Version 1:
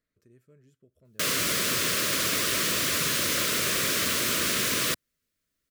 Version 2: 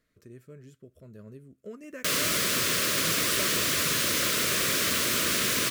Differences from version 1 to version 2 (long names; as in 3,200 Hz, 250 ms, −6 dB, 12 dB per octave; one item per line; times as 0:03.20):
speech +10.5 dB
background: entry +0.85 s